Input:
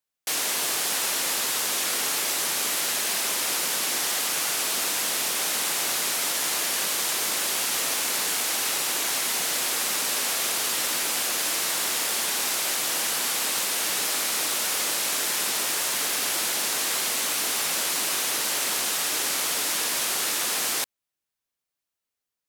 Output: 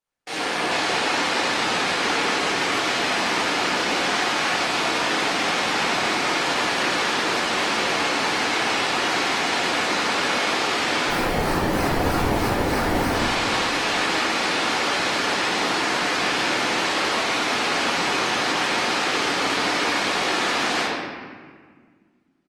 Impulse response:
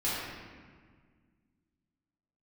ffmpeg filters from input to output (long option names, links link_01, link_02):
-filter_complex "[0:a]acrossover=split=6700[link_01][link_02];[link_02]acompressor=threshold=-40dB:ratio=4:attack=1:release=60[link_03];[link_01][link_03]amix=inputs=2:normalize=0,lowpass=frequency=10000:width=0.5412,lowpass=frequency=10000:width=1.3066,highshelf=frequency=3600:gain=-11.5,asplit=3[link_04][link_05][link_06];[link_04]afade=type=out:start_time=11.08:duration=0.02[link_07];[link_05]acrusher=samples=24:mix=1:aa=0.000001:lfo=1:lforange=24:lforate=3.2,afade=type=in:start_time=11.08:duration=0.02,afade=type=out:start_time=13.12:duration=0.02[link_08];[link_06]afade=type=in:start_time=13.12:duration=0.02[link_09];[link_07][link_08][link_09]amix=inputs=3:normalize=0,aecho=1:1:138:0.0891[link_10];[1:a]atrim=start_sample=2205[link_11];[link_10][link_11]afir=irnorm=-1:irlink=0,alimiter=level_in=10dB:limit=-1dB:release=50:level=0:latency=1,volume=-7.5dB" -ar 48000 -c:a libopus -b:a 32k